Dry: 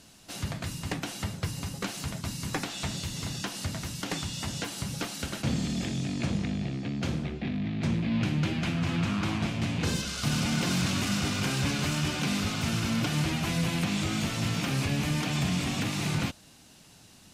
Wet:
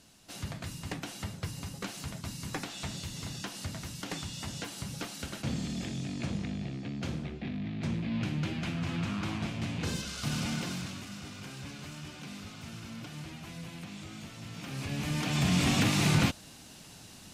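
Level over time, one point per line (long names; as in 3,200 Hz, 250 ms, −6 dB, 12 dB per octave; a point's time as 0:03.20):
0:10.50 −5 dB
0:11.07 −15 dB
0:14.47 −15 dB
0:14.93 −6.5 dB
0:15.68 +4 dB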